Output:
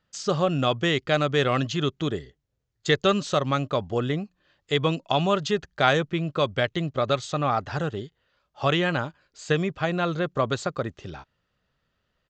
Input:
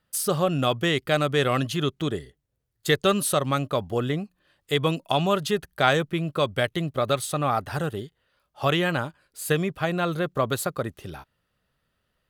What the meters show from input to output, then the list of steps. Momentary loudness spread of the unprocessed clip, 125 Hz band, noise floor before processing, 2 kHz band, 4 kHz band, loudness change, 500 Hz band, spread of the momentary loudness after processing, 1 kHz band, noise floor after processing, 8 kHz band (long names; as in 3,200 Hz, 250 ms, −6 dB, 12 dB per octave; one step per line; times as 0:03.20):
11 LU, 0.0 dB, −76 dBFS, 0.0 dB, 0.0 dB, 0.0 dB, 0.0 dB, 11 LU, 0.0 dB, −77 dBFS, −8.0 dB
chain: downsampling to 16,000 Hz